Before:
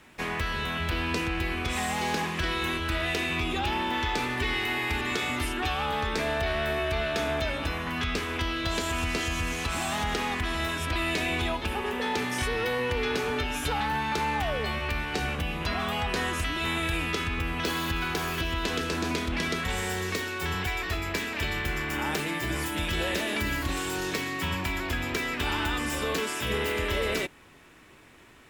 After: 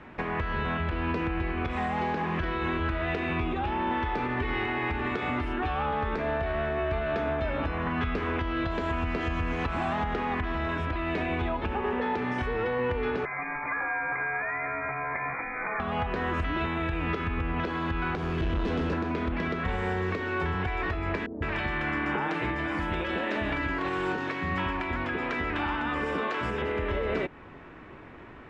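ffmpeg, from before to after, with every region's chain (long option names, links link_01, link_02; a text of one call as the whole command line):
ffmpeg -i in.wav -filter_complex "[0:a]asettb=1/sr,asplit=3[link_01][link_02][link_03];[link_01]atrim=end=13.254[link_04];[link_02]atrim=start=13.25:end=15.8,asetpts=PTS-STARTPTS,afade=type=in:duration=0.004:curve=qsin,afade=type=out:start_time=2.546:duration=0.004:curve=qsin,acrossover=split=120|290[link_05][link_06][link_07];[link_05]acompressor=threshold=-47dB:ratio=4[link_08];[link_06]acompressor=threshold=-51dB:ratio=4[link_09];[link_07]acompressor=threshold=-35dB:ratio=4[link_10];[link_08][link_09][link_10]amix=inputs=3:normalize=0,lowpass=frequency=2100:width_type=q:width=0.5098,lowpass=frequency=2100:width_type=q:width=0.6013,lowpass=frequency=2100:width_type=q:width=0.9,lowpass=frequency=2100:width_type=q:width=2.563,afreqshift=-2500[link_11];[link_03]atrim=start=15.796[link_12];[link_04][link_11]acrossfade=duration=0.004:curve1=hsin:curve2=qsin[link_13];[link_13][link_12]acrossfade=duration=0.004:curve1=qsin:curve2=hsin,asettb=1/sr,asplit=3[link_14][link_15][link_16];[link_14]atrim=end=18.154[link_17];[link_15]atrim=start=18.15:end=18.93,asetpts=PTS-STARTPTS,afade=type=in:duration=0.004:curve=qsin,afade=type=out:start_time=0.776:duration=0.004:curve=qsin,acrossover=split=480|3000[link_18][link_19][link_20];[link_19]acompressor=threshold=-47dB:ratio=2:attack=3.2:release=140:knee=2.83:detection=peak[link_21];[link_18][link_21][link_20]amix=inputs=3:normalize=0,asoftclip=type=hard:threshold=-32.5dB[link_22];[link_16]atrim=start=18.926[link_23];[link_17][link_22]acrossfade=duration=0.004:curve1=hsin:curve2=qsin[link_24];[link_24][link_23]acrossfade=duration=0.004:curve1=qsin:curve2=hsin,asettb=1/sr,asplit=3[link_25][link_26][link_27];[link_25]atrim=end=21.264[link_28];[link_26]atrim=start=21.26:end=26.62,asetpts=PTS-STARTPTS,afade=type=in:duration=0.004:curve=qsin,afade=type=out:start_time=5.356:duration=0.004:curve=qsin,lowshelf=frequency=190:gain=-8.5,acrossover=split=490[link_29][link_30];[link_30]adelay=160[link_31];[link_29][link_31]amix=inputs=2:normalize=0,atrim=end_sample=236376[link_32];[link_27]atrim=start=26.616[link_33];[link_28][link_32]acrossfade=duration=0.004:curve1=hsin:curve2=qsin[link_34];[link_34][link_33]acrossfade=duration=0.004:curve1=qsin:curve2=hsin,lowpass=1600,acompressor=threshold=-32dB:ratio=6,alimiter=level_in=5dB:limit=-24dB:level=0:latency=1:release=318,volume=-5dB,volume=9dB" out.wav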